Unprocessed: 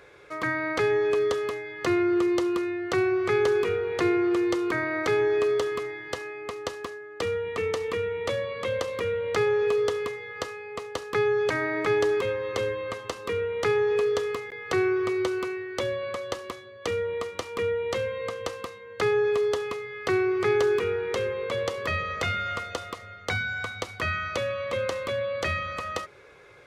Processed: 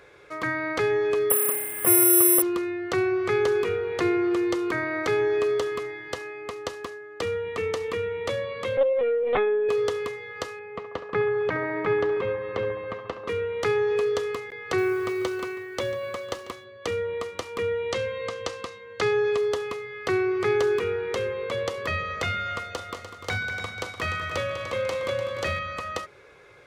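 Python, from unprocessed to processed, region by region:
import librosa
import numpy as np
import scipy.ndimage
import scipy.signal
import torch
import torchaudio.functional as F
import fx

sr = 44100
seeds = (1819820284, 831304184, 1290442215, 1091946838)

y = fx.chain(x, sr, fx.cvsd(bps=16000),
    fx.resample_bad(factor=4, down='filtered', up='zero_stuff'), at=(1.3, 2.42))
y = fx.chain(y, sr, fx.highpass_res(hz=590.0, q=6.1),
    fx.lpc_vocoder(seeds[0], excitation='pitch_kept', order=16), at=(8.77, 9.69))
y = fx.chain(y, sr, fx.lowpass(hz=2400.0, slope=12),
    fx.peak_eq(hz=180.0, db=7.0, octaves=0.4),
    fx.echo_banded(ms=69, feedback_pct=81, hz=830.0, wet_db=-11.0), at=(10.59, 13.28))
y = fx.chain(y, sr, fx.quant_float(bits=4),
    fx.echo_single(ms=144, db=-17.0), at=(14.78, 16.64))
y = fx.chain(y, sr, fx.lowpass(hz=6200.0, slope=12),
    fx.high_shelf(hz=4300.0, db=9.0), at=(17.71, 19.37))
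y = fx.chain(y, sr, fx.doubler(ms=42.0, db=-14),
    fx.clip_hard(threshold_db=-21.5),
    fx.echo_heads(ms=99, heads='second and third', feedback_pct=50, wet_db=-10.0), at=(22.69, 25.59))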